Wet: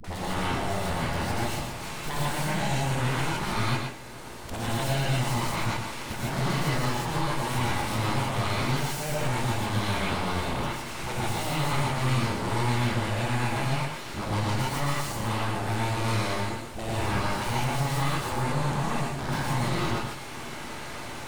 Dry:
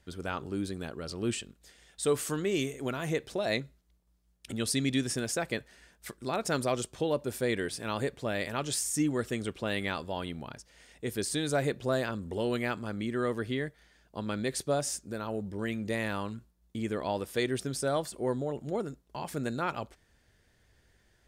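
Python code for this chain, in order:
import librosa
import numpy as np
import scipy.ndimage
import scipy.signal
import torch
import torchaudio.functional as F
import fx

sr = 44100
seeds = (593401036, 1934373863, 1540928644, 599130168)

p1 = fx.bin_compress(x, sr, power=0.4)
p2 = scipy.signal.sosfilt(scipy.signal.butter(2, 44.0, 'highpass', fs=sr, output='sos'), p1)
p3 = fx.high_shelf(p2, sr, hz=3400.0, db=-8.0)
p4 = np.abs(p3)
p5 = fx.dispersion(p4, sr, late='highs', ms=44.0, hz=400.0)
p6 = p5 + fx.echo_single(p5, sr, ms=116, db=-6.5, dry=0)
p7 = fx.rev_gated(p6, sr, seeds[0], gate_ms=180, shape='rising', drr_db=-7.0)
p8 = fx.band_squash(p7, sr, depth_pct=40)
y = p8 * librosa.db_to_amplitude(-7.5)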